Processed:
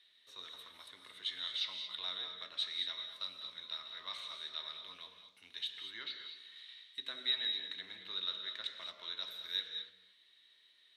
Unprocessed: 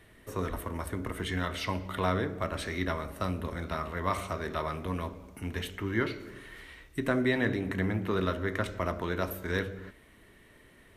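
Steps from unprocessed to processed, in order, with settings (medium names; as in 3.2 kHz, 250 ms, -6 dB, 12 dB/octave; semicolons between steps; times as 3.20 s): band-pass filter 3.8 kHz, Q 11; reverberation, pre-delay 3 ms, DRR 6 dB; trim +10.5 dB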